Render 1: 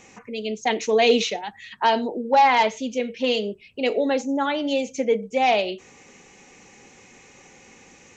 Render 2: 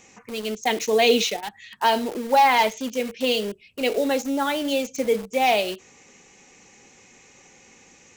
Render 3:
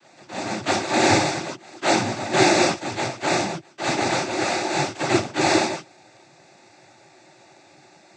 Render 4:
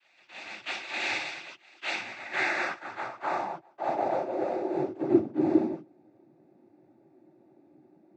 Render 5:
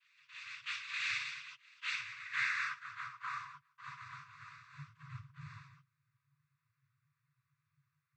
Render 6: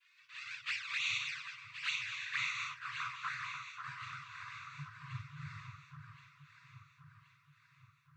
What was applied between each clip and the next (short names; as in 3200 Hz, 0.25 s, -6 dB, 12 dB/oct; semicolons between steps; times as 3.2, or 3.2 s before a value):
in parallel at -7 dB: bit-crush 5-bit; on the sum: high shelf 4500 Hz +6.5 dB; gain -4 dB
sample sorter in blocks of 128 samples; non-linear reverb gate 80 ms flat, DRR -6 dB; noise vocoder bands 16; gain -2.5 dB
tilt -1.5 dB/oct; band-pass sweep 2700 Hz -> 280 Hz, 1.9–5.35; gain -1 dB
FFT band-reject 160–970 Hz; gain -5.5 dB
envelope flanger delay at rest 2.9 ms, full sweep at -35.5 dBFS; echo with dull and thin repeats by turns 0.537 s, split 1600 Hz, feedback 67%, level -6 dB; gain +5 dB